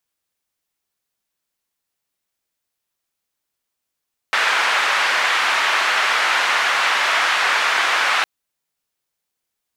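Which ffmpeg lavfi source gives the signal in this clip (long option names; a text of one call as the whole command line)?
ffmpeg -f lavfi -i "anoisesrc=color=white:duration=3.91:sample_rate=44100:seed=1,highpass=frequency=1200,lowpass=frequency=1700,volume=1.6dB" out.wav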